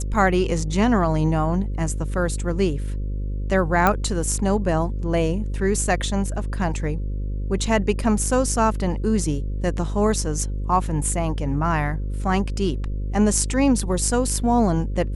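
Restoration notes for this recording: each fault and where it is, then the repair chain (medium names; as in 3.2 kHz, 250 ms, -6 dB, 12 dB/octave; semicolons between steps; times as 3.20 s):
buzz 50 Hz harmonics 11 -26 dBFS
3.87 s: pop -5 dBFS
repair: de-click; de-hum 50 Hz, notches 11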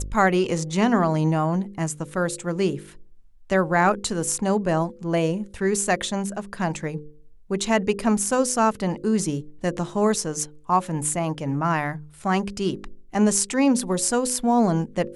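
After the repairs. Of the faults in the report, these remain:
nothing left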